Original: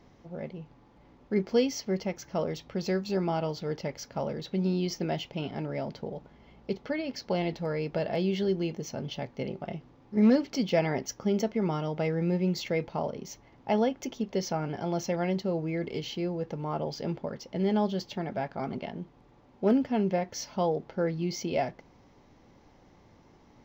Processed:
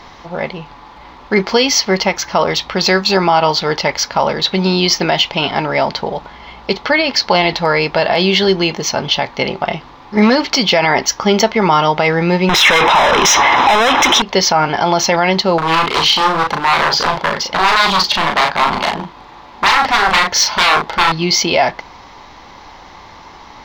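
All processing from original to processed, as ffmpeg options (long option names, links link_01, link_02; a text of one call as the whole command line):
ffmpeg -i in.wav -filter_complex "[0:a]asettb=1/sr,asplit=3[link_01][link_02][link_03];[link_01]atrim=end=12.494[link_04];[link_02]atrim=start=12.49:end=14.22,asetpts=PTS-STARTPTS,afade=type=in:duration=0.004:curve=qsin,afade=type=out:start_time=1.726:duration=0.004:curve=qsin,asplit=2[link_05][link_06];[link_06]highpass=frequency=720:poles=1,volume=39dB,asoftclip=type=tanh:threshold=-14.5dB[link_07];[link_05][link_07]amix=inputs=2:normalize=0,lowpass=frequency=3400:poles=1,volume=-6dB,asuperstop=centerf=4500:order=12:qfactor=6.2[link_08];[link_03]atrim=start=14.216[link_09];[link_04][link_08]acrossfade=duration=0.004:curve1=hsin:curve2=qsin[link_10];[link_10][link_09]acrossfade=duration=0.004:curve1=qsin:curve2=hsin,asettb=1/sr,asplit=3[link_11][link_12][link_13];[link_11]atrim=end=15.584[link_14];[link_12]atrim=start=15.58:end=21.12,asetpts=PTS-STARTPTS,afade=type=in:duration=0.004:curve=qsin,afade=type=out:start_time=5.536:duration=0.004:curve=qsin,aeval=exprs='0.0266*(abs(mod(val(0)/0.0266+3,4)-2)-1)':channel_layout=same,asplit=2[link_15][link_16];[link_16]adelay=37,volume=-4dB[link_17];[link_15][link_17]amix=inputs=2:normalize=0,atrim=end_sample=244314[link_18];[link_13]atrim=start=21.116[link_19];[link_14][link_18]acrossfade=duration=0.004:curve1=hsin:curve2=qsin[link_20];[link_20][link_19]acrossfade=duration=0.004:curve1=qsin:curve2=hsin,equalizer=frequency=125:width_type=o:width=1:gain=-8,equalizer=frequency=250:width_type=o:width=1:gain=-5,equalizer=frequency=500:width_type=o:width=1:gain=-4,equalizer=frequency=1000:width_type=o:width=1:gain=11,equalizer=frequency=2000:width_type=o:width=1:gain=4,equalizer=frequency=4000:width_type=o:width=1:gain=10,alimiter=level_in=19.5dB:limit=-1dB:release=50:level=0:latency=1,volume=-1dB" out.wav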